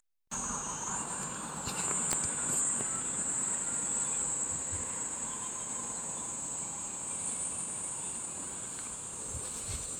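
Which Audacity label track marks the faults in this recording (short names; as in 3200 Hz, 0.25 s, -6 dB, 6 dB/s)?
2.130000	2.130000	pop -13 dBFS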